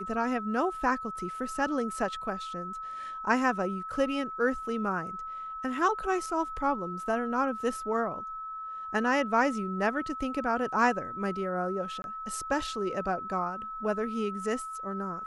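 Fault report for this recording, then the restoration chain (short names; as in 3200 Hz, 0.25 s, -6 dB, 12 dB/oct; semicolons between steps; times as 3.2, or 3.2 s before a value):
tone 1300 Hz -36 dBFS
12.02–12.04 gap 21 ms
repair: notch 1300 Hz, Q 30; interpolate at 12.02, 21 ms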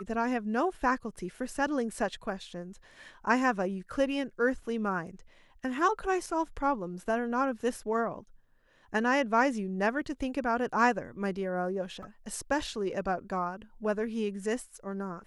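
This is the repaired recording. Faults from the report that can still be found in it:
none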